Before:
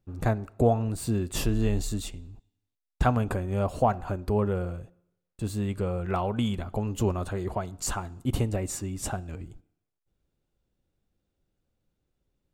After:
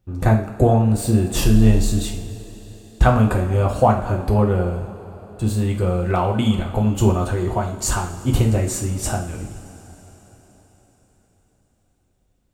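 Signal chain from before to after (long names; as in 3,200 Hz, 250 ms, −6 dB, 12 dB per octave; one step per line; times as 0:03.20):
coupled-rooms reverb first 0.46 s, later 4.7 s, from −19 dB, DRR 1 dB
level +6 dB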